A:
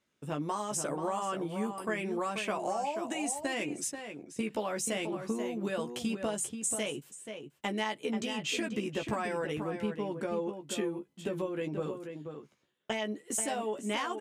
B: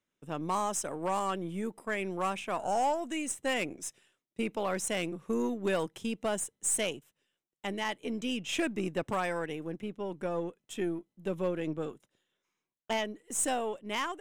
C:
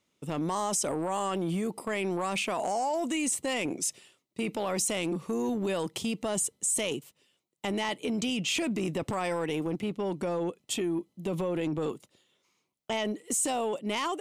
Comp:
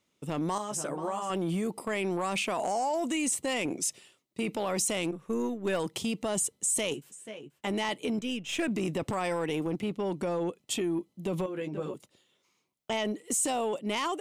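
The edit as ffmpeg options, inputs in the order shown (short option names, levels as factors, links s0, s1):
-filter_complex "[0:a]asplit=3[s0][s1][s2];[1:a]asplit=2[s3][s4];[2:a]asplit=6[s5][s6][s7][s8][s9][s10];[s5]atrim=end=0.582[s11];[s0]atrim=start=0.578:end=1.302[s12];[s6]atrim=start=1.298:end=5.112[s13];[s3]atrim=start=5.108:end=5.802[s14];[s7]atrim=start=5.798:end=6.942[s15];[s1]atrim=start=6.938:end=7.672[s16];[s8]atrim=start=7.668:end=8.192[s17];[s4]atrim=start=8.188:end=8.682[s18];[s9]atrim=start=8.678:end=11.462[s19];[s2]atrim=start=11.458:end=11.942[s20];[s10]atrim=start=11.938[s21];[s11][s12]acrossfade=d=0.004:c1=hsin:c2=hsin[s22];[s22][s13]acrossfade=d=0.004:c1=hsin:c2=hsin[s23];[s23][s14]acrossfade=d=0.004:c1=hsin:c2=hsin[s24];[s24][s15]acrossfade=d=0.004:c1=hsin:c2=hsin[s25];[s25][s16]acrossfade=d=0.004:c1=hsin:c2=hsin[s26];[s26][s17]acrossfade=d=0.004:c1=hsin:c2=hsin[s27];[s27][s18]acrossfade=d=0.004:c1=hsin:c2=hsin[s28];[s28][s19]acrossfade=d=0.004:c1=hsin:c2=hsin[s29];[s29][s20]acrossfade=d=0.004:c1=hsin:c2=hsin[s30];[s30][s21]acrossfade=d=0.004:c1=hsin:c2=hsin"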